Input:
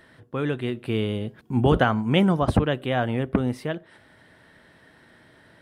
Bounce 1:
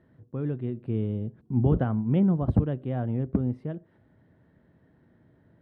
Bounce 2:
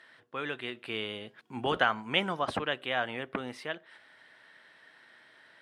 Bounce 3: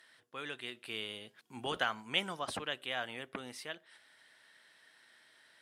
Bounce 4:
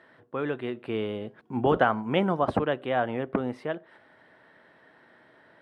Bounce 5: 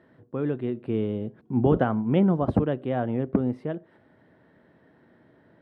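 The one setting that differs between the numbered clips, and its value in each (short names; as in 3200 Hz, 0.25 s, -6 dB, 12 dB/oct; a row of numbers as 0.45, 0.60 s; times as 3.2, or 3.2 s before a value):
band-pass, frequency: 110, 2600, 6600, 830, 290 Hz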